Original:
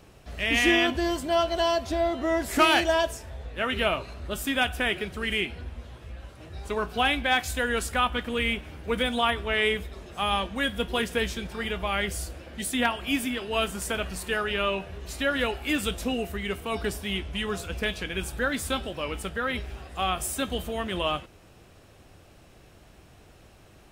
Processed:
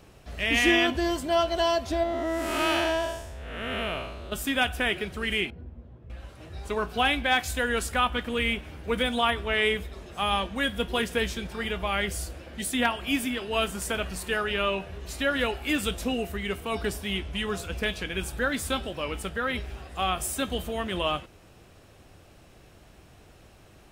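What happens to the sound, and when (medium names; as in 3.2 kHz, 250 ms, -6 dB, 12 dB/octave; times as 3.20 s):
2.03–4.32 s: spectral blur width 251 ms
5.50–6.10 s: band-pass filter 170 Hz, Q 0.69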